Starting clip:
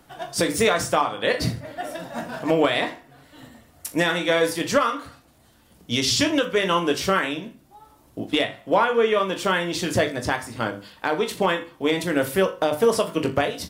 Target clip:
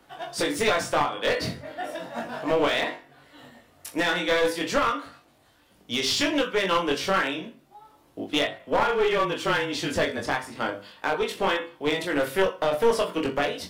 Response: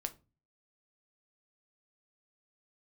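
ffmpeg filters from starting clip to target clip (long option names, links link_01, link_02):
-filter_complex "[0:a]bass=frequency=250:gain=-7,treble=frequency=4000:gain=-13,acrossover=split=330|3200[link_01][link_02][link_03];[link_03]acontrast=86[link_04];[link_01][link_02][link_04]amix=inputs=3:normalize=0,flanger=delay=20:depth=2.1:speed=0.34,asplit=3[link_05][link_06][link_07];[link_05]afade=type=out:start_time=8.58:duration=0.02[link_08];[link_06]afreqshift=-27,afade=type=in:start_time=8.58:duration=0.02,afade=type=out:start_time=10.26:duration=0.02[link_09];[link_07]afade=type=in:start_time=10.26:duration=0.02[link_10];[link_08][link_09][link_10]amix=inputs=3:normalize=0,aeval=exprs='clip(val(0),-1,0.0668)':channel_layout=same,volume=2dB"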